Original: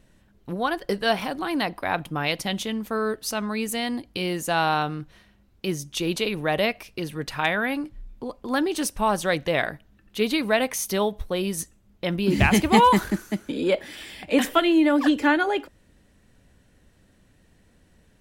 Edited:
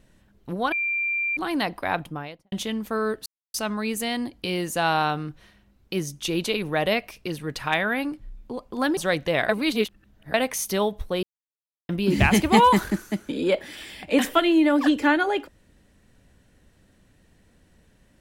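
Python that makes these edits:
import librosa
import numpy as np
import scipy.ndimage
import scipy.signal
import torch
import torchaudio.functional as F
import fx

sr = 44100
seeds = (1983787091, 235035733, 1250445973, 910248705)

y = fx.studio_fade_out(x, sr, start_s=1.9, length_s=0.62)
y = fx.edit(y, sr, fx.bleep(start_s=0.72, length_s=0.65, hz=2370.0, db=-22.5),
    fx.insert_silence(at_s=3.26, length_s=0.28),
    fx.cut(start_s=8.69, length_s=0.48),
    fx.reverse_span(start_s=9.69, length_s=0.85),
    fx.silence(start_s=11.43, length_s=0.66), tone=tone)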